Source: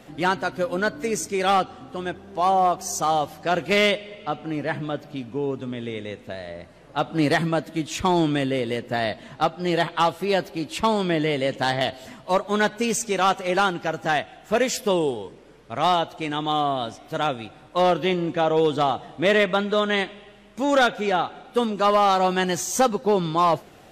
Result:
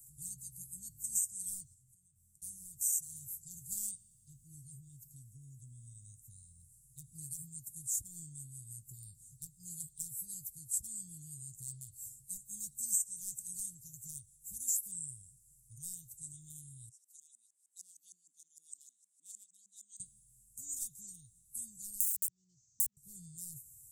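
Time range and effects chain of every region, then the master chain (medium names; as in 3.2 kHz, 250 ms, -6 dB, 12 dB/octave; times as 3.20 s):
1.74–2.42 s: compression, threshold -38 dBFS + feedback comb 110 Hz, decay 0.33 s
16.89–20.00 s: tone controls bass +3 dB, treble +6 dB + LFO band-pass saw up 6.5 Hz 880–6400 Hz + brick-wall FIR high-pass 180 Hz
22.00–22.97 s: CVSD coder 32 kbps + band-pass filter 800 Hz, Q 1.4 + integer overflow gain 16.5 dB
whole clip: Chebyshev band-stop 130–7800 Hz, order 4; compression 5:1, threshold -40 dBFS; tone controls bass -9 dB, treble +14 dB; trim -3 dB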